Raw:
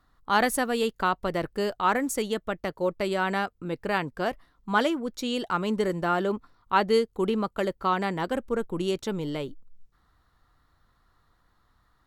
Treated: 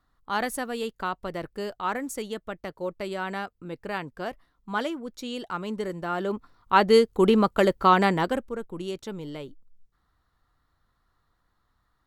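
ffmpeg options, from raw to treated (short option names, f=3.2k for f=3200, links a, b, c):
-af "volume=7dB,afade=t=in:st=6.08:d=1.24:silence=0.251189,afade=t=out:st=8.06:d=0.46:silence=0.237137"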